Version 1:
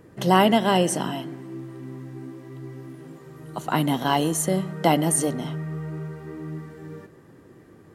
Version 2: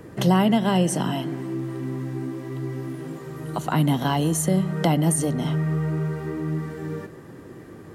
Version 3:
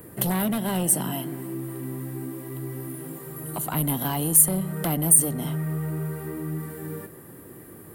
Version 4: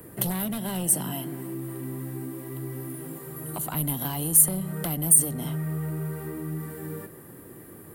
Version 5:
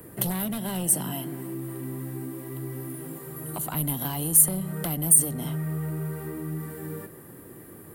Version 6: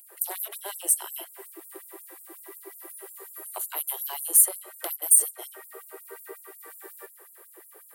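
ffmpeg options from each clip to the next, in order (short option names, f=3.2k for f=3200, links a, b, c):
-filter_complex "[0:a]acrossover=split=180[a][b];[b]acompressor=threshold=-35dB:ratio=2.5[c];[a][c]amix=inputs=2:normalize=0,volume=8dB"
-af "aeval=exprs='0.447*sin(PI/2*2.24*val(0)/0.447)':c=same,aexciter=amount=15.5:drive=2.5:freq=8.9k,volume=-14.5dB"
-filter_complex "[0:a]acrossover=split=150|3000[a][b][c];[b]acompressor=threshold=-30dB:ratio=6[d];[a][d][c]amix=inputs=3:normalize=0,volume=-1dB"
-af anull
-af "afftfilt=real='re*gte(b*sr/1024,320*pow(7100/320,0.5+0.5*sin(2*PI*5.5*pts/sr)))':imag='im*gte(b*sr/1024,320*pow(7100/320,0.5+0.5*sin(2*PI*5.5*pts/sr)))':win_size=1024:overlap=0.75"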